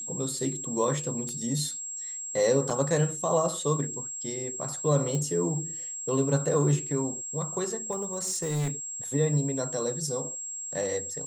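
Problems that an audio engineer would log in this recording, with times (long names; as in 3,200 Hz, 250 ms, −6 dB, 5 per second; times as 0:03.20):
whistle 7,600 Hz −34 dBFS
0:01.29: click −24 dBFS
0:02.70–0:02.71: drop-out 5 ms
0:05.15: click −20 dBFS
0:07.91–0:08.71: clipping −25.5 dBFS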